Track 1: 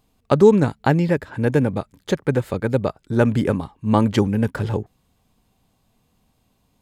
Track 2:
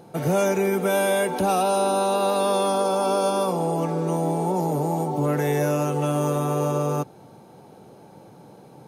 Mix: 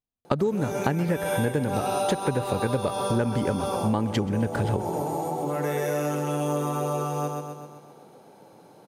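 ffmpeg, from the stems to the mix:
-filter_complex "[0:a]agate=range=0.0224:threshold=0.0141:ratio=3:detection=peak,volume=1.33,asplit=2[s0][s1];[s1]volume=0.133[s2];[1:a]highpass=f=290:p=1,adelay=250,volume=0.668,asplit=2[s3][s4];[s4]volume=0.631[s5];[s2][s5]amix=inputs=2:normalize=0,aecho=0:1:129|258|387|516|645|774|903|1032:1|0.56|0.314|0.176|0.0983|0.0551|0.0308|0.0173[s6];[s0][s3][s6]amix=inputs=3:normalize=0,acompressor=threshold=0.0891:ratio=10"

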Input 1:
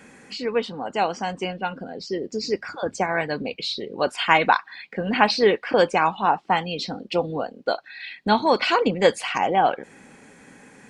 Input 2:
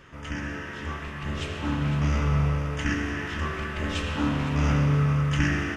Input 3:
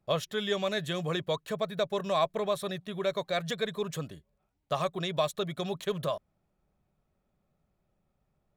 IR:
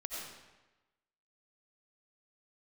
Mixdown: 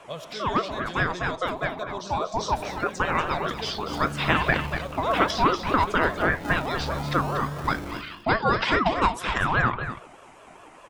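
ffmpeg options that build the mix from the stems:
-filter_complex "[0:a]aeval=exprs='val(0)*sin(2*PI*670*n/s+670*0.35/4.9*sin(2*PI*4.9*n/s))':c=same,volume=1.33,asplit=2[s0][s1];[s1]volume=0.376[s2];[1:a]flanger=delay=7.8:depth=5.6:regen=-64:speed=0.3:shape=triangular,acrusher=samples=33:mix=1:aa=0.000001:lfo=1:lforange=19.8:lforate=0.5,adelay=2250,volume=0.631,asplit=3[s3][s4][s5];[s4]volume=0.422[s6];[s5]volume=0.398[s7];[2:a]volume=0.562,asplit=2[s8][s9];[s9]volume=0.562[s10];[s0][s3]amix=inputs=2:normalize=0,equalizer=f=730:t=o:w=2.6:g=7,acompressor=threshold=0.251:ratio=6,volume=1[s11];[3:a]atrim=start_sample=2205[s12];[s6][s10]amix=inputs=2:normalize=0[s13];[s13][s12]afir=irnorm=-1:irlink=0[s14];[s2][s7]amix=inputs=2:normalize=0,aecho=0:1:239:1[s15];[s8][s11][s14][s15]amix=inputs=4:normalize=0,flanger=delay=5.3:depth=3.5:regen=90:speed=1.7:shape=triangular"

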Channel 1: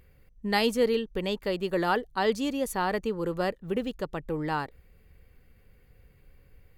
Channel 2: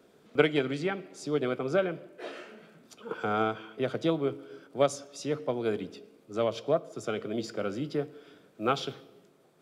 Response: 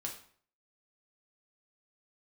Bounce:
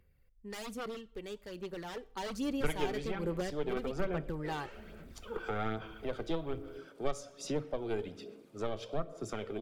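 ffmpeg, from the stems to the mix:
-filter_complex "[0:a]aeval=exprs='0.0708*(abs(mod(val(0)/0.0708+3,4)-2)-1)':c=same,volume=0.708,afade=t=in:st=1.93:d=0.65:silence=0.251189,asplit=2[s0][s1];[s1]volume=0.237[s2];[1:a]aeval=exprs='0.398*(cos(1*acos(clip(val(0)/0.398,-1,1)))-cos(1*PI/2))+0.0398*(cos(6*acos(clip(val(0)/0.398,-1,1)))-cos(6*PI/2))':c=same,adelay=2250,volume=0.75,asplit=2[s3][s4];[s4]volume=0.299[s5];[2:a]atrim=start_sample=2205[s6];[s2][s5]amix=inputs=2:normalize=0[s7];[s7][s6]afir=irnorm=-1:irlink=0[s8];[s0][s3][s8]amix=inputs=3:normalize=0,acrossover=split=120[s9][s10];[s10]acompressor=threshold=0.01:ratio=2[s11];[s9][s11]amix=inputs=2:normalize=0,aphaser=in_gain=1:out_gain=1:delay=2.6:decay=0.39:speed=1.2:type=sinusoidal"

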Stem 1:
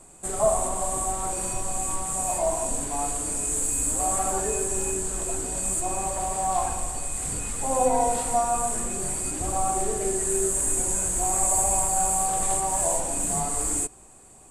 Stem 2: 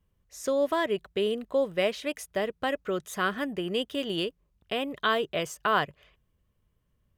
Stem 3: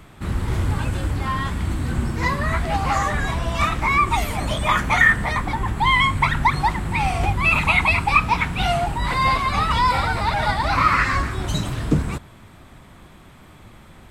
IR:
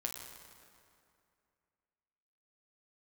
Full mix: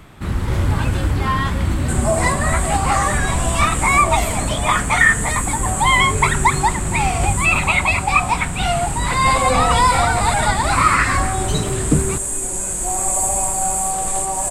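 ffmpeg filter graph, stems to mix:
-filter_complex "[0:a]adelay=1650,volume=1.12[s0];[1:a]volume=0.178[s1];[2:a]volume=1.33[s2];[s0][s1][s2]amix=inputs=3:normalize=0,dynaudnorm=f=430:g=3:m=1.41"

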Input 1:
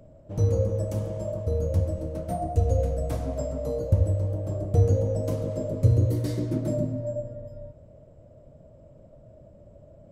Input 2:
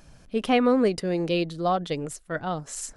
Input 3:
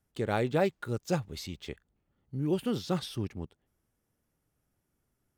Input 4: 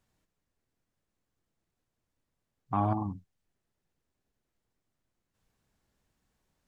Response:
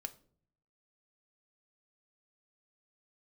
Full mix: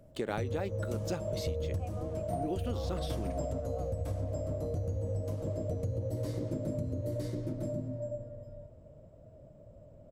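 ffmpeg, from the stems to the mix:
-filter_complex "[0:a]alimiter=limit=0.126:level=0:latency=1:release=171,volume=1.06,asplit=2[s0][s1];[s1]volume=0.422[s2];[1:a]asplit=3[s3][s4][s5];[s3]bandpass=f=730:t=q:w=8,volume=1[s6];[s4]bandpass=f=1090:t=q:w=8,volume=0.501[s7];[s5]bandpass=f=2440:t=q:w=8,volume=0.355[s8];[s6][s7][s8]amix=inputs=3:normalize=0,adelay=1300,volume=0.211[s9];[2:a]highpass=200,volume=1.33,asplit=2[s10][s11];[3:a]volume=0.282[s12];[s11]apad=whole_len=446068[s13];[s0][s13]sidechaingate=range=0.447:threshold=0.00141:ratio=16:detection=peak[s14];[s2]aecho=0:1:955:1[s15];[s14][s9][s10][s12][s15]amix=inputs=5:normalize=0,acompressor=threshold=0.0316:ratio=12"

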